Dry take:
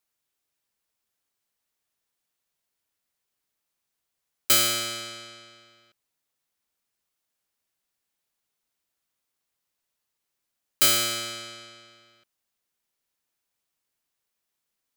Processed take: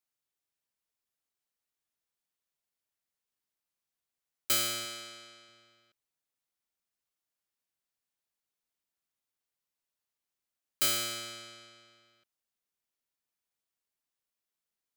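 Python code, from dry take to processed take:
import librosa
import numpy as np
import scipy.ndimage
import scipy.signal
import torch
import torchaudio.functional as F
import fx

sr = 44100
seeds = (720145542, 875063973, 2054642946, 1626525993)

y = fx.highpass(x, sr, hz=180.0, slope=6, at=(4.85, 5.49))
y = F.gain(torch.from_numpy(y), -8.5).numpy()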